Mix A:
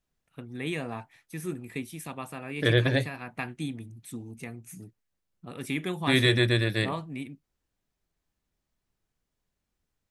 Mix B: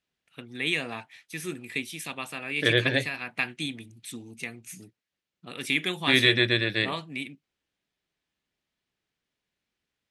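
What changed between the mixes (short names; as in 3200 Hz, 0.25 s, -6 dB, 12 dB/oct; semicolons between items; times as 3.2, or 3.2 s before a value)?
second voice: add LPF 1700 Hz 6 dB/oct; master: add weighting filter D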